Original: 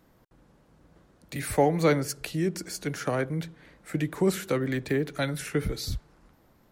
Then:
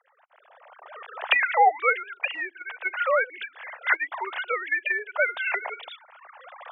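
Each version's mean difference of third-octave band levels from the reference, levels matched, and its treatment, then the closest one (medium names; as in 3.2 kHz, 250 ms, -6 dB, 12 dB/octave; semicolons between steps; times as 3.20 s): 20.0 dB: formants replaced by sine waves; recorder AGC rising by 24 dB/s; steep high-pass 640 Hz 36 dB/octave; trim +8 dB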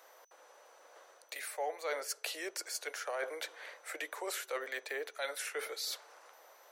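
13.5 dB: steep high-pass 500 Hz 36 dB/octave; reverse; compression 4:1, threshold -46 dBFS, peak gain reduction 21.5 dB; reverse; whistle 6 kHz -78 dBFS; trim +7.5 dB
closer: second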